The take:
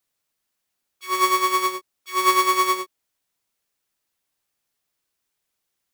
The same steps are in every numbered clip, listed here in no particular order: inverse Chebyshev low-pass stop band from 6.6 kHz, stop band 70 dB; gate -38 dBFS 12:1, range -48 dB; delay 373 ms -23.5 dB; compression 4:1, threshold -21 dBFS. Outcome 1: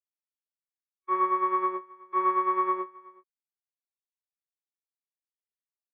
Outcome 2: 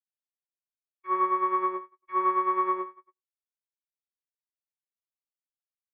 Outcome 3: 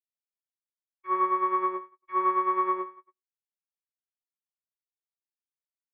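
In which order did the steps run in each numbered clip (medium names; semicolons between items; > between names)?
compression > inverse Chebyshev low-pass > gate > delay; delay > compression > gate > inverse Chebyshev low-pass; delay > gate > compression > inverse Chebyshev low-pass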